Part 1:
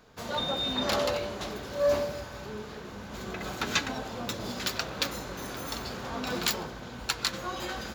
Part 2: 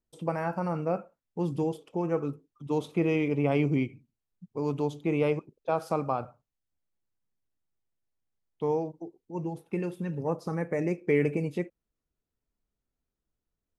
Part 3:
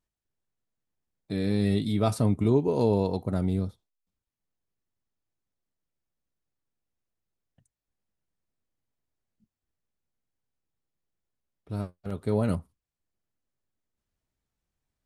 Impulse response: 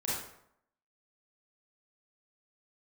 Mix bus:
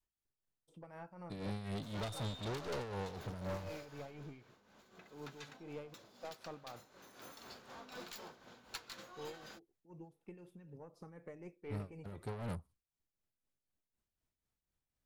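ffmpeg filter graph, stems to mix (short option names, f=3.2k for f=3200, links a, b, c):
-filter_complex "[0:a]highpass=f=300:p=1,adelay=1650,volume=-1.5dB,afade=t=out:st=3.8:d=0.6:silence=0.281838,afade=t=in:st=6.94:d=0.31:silence=0.446684[a];[1:a]adelay=550,volume=-17dB[b];[2:a]volume=-3.5dB[c];[a][b][c]amix=inputs=3:normalize=0,aeval=exprs='(tanh(50.1*val(0)+0.25)-tanh(0.25))/50.1':c=same,adynamicequalizer=threshold=0.00224:dfrequency=260:dqfactor=1.2:tfrequency=260:tqfactor=1.2:attack=5:release=100:ratio=0.375:range=3.5:mode=cutabove:tftype=bell,tremolo=f=4:d=0.59"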